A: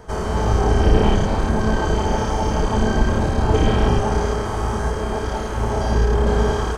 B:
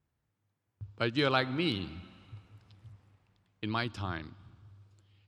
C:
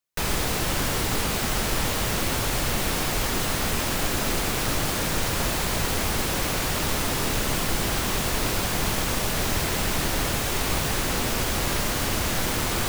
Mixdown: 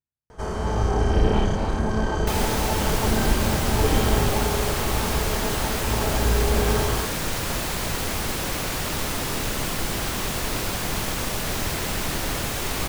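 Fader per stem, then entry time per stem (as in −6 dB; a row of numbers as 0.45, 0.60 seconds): −4.5, −17.5, −1.5 decibels; 0.30, 0.00, 2.10 seconds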